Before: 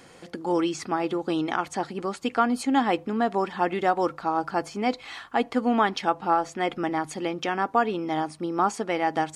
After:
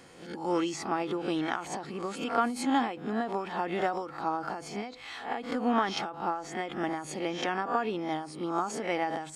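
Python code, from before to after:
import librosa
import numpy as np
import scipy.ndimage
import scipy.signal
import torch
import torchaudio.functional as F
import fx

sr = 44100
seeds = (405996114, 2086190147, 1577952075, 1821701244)

y = fx.spec_swells(x, sr, rise_s=0.4)
y = fx.end_taper(y, sr, db_per_s=100.0)
y = y * 10.0 ** (-4.5 / 20.0)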